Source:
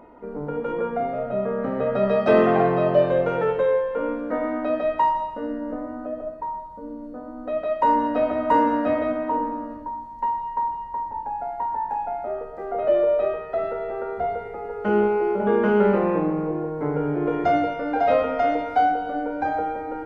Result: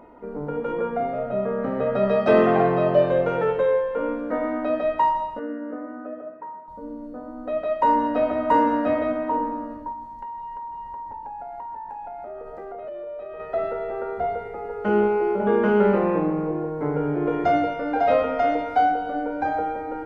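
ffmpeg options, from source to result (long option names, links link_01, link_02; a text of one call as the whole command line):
ffmpeg -i in.wav -filter_complex "[0:a]asettb=1/sr,asplit=3[link_01][link_02][link_03];[link_01]atrim=end=5.394[link_04];[link_02]atrim=start=5.39:end=6.68,asetpts=PTS-STARTPTS,afade=type=in:duration=0.004:curve=qsin,afade=type=out:start_time=1.286:duration=0.004:curve=qsin,highpass=250,equalizer=frequency=650:width_type=q:width=4:gain=-5,equalizer=frequency=920:width_type=q:width=4:gain=-7,equalizer=frequency=1400:width_type=q:width=4:gain=4,lowpass=frequency=2600:width=0.5412,lowpass=frequency=2600:width=1.3066[link_05];[link_03]atrim=start=6.676[link_06];[link_04][link_05]acrossfade=duration=0.004:curve1=hsin:curve2=qsin[link_07];[link_07][link_06]acrossfade=duration=0.004:curve1=qsin:curve2=hsin,asettb=1/sr,asplit=3[link_08][link_09][link_10];[link_08]atrim=end=9.924[link_11];[link_09]atrim=start=9.92:end=13.4,asetpts=PTS-STARTPTS,afade=type=in:duration=0.004:curve=qsin,afade=type=out:start_time=3.476:duration=0.004:curve=qsin,acompressor=threshold=-32dB:ratio=10:attack=3.2:release=140:knee=1:detection=peak[link_12];[link_10]atrim=start=13.396[link_13];[link_11][link_12]acrossfade=duration=0.004:curve1=hsin:curve2=qsin[link_14];[link_14][link_13]acrossfade=duration=0.004:curve1=qsin:curve2=hsin" out.wav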